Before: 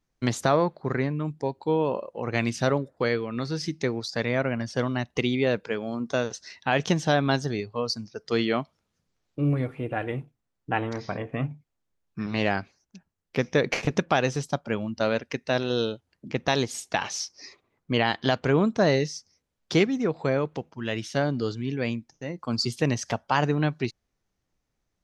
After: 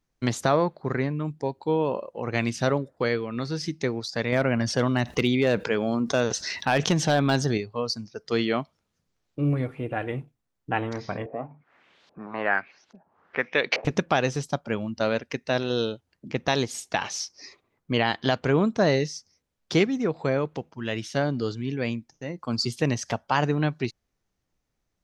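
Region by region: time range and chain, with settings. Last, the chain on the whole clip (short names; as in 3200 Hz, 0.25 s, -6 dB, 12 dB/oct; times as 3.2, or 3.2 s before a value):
4.32–7.58 overloaded stage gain 14.5 dB + fast leveller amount 50%
11.26–13.85 weighting filter A + upward compressor, threshold -38 dBFS + LFO low-pass saw up 1.2 Hz 560–4500 Hz
whole clip: dry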